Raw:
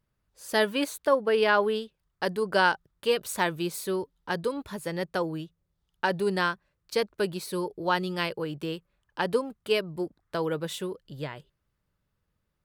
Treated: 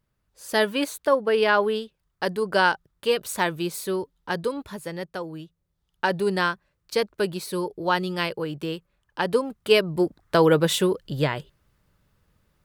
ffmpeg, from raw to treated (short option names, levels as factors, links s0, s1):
-af "volume=8.91,afade=t=out:st=4.47:d=0.76:silence=0.446684,afade=t=in:st=5.23:d=0.82:silence=0.421697,afade=t=in:st=9.29:d=1.19:silence=0.354813"